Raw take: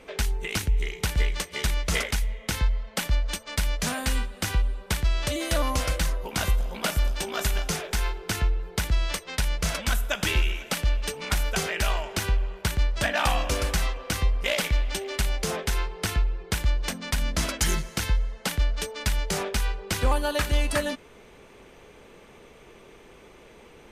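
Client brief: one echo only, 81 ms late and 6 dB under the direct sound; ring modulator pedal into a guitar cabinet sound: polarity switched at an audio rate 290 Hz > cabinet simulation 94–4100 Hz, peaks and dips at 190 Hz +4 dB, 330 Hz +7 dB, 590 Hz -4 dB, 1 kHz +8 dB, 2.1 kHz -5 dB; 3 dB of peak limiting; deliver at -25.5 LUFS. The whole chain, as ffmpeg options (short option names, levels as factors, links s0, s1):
-af "alimiter=limit=0.15:level=0:latency=1,aecho=1:1:81:0.501,aeval=exprs='val(0)*sgn(sin(2*PI*290*n/s))':c=same,highpass=94,equalizer=f=190:t=q:w=4:g=4,equalizer=f=330:t=q:w=4:g=7,equalizer=f=590:t=q:w=4:g=-4,equalizer=f=1000:t=q:w=4:g=8,equalizer=f=2100:t=q:w=4:g=-5,lowpass=f=4100:w=0.5412,lowpass=f=4100:w=1.3066,volume=0.794"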